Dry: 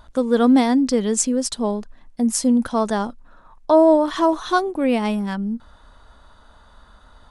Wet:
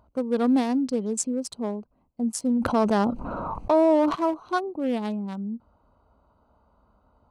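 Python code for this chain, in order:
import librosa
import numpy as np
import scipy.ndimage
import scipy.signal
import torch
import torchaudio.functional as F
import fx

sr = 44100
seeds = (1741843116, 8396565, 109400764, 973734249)

y = fx.wiener(x, sr, points=25)
y = scipy.signal.sosfilt(scipy.signal.butter(2, 73.0, 'highpass', fs=sr, output='sos'), y)
y = fx.env_flatten(y, sr, amount_pct=70, at=(2.6, 4.14), fade=0.02)
y = y * librosa.db_to_amplitude(-6.5)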